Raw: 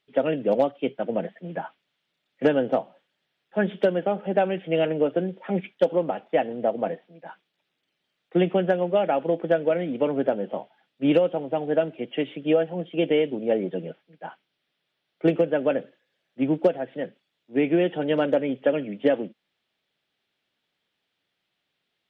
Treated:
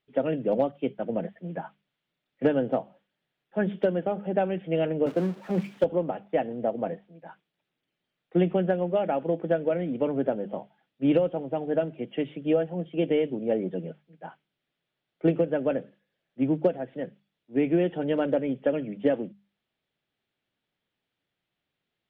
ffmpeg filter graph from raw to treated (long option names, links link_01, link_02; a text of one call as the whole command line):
ffmpeg -i in.wav -filter_complex "[0:a]asettb=1/sr,asplit=3[link_01][link_02][link_03];[link_01]atrim=end=5.064[link_04];[link_02]atrim=start=5.06:end=5.84,asetpts=PTS-STARTPTS,afade=type=in:duration=0.004:curve=qsin,afade=type=out:start_time=0.776:duration=0.004:curve=qsin,aeval=exprs='val(0)+0.5*0.0398*sgn(val(0))':channel_layout=same,highpass=frequency=140:width=0.5412,highpass=frequency=140:width=1.3066,agate=range=-33dB:threshold=-25dB:ratio=3:release=100:detection=peak[link_05];[link_03]atrim=start=5.836[link_06];[link_04][link_05]acrossfade=duration=0.004:curve1=hsin:curve2=qsin[link_07];[link_07][link_06]acrossfade=duration=0.004:curve1=qsin:curve2=hsin,lowpass=frequency=2900:poles=1,lowshelf=frequency=180:gain=10.5,bandreject=frequency=50:width_type=h:width=6,bandreject=frequency=100:width_type=h:width=6,bandreject=frequency=150:width_type=h:width=6,bandreject=frequency=200:width_type=h:width=6,volume=-4.5dB" out.wav